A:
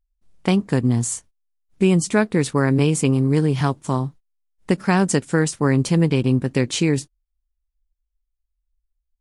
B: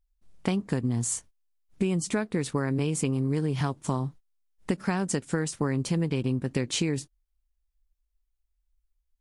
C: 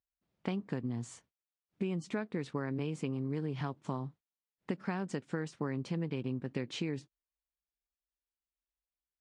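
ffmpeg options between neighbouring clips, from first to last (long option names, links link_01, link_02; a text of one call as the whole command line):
ffmpeg -i in.wav -af "acompressor=threshold=-24dB:ratio=6" out.wav
ffmpeg -i in.wav -af "highpass=120,lowpass=3700,volume=-8dB" out.wav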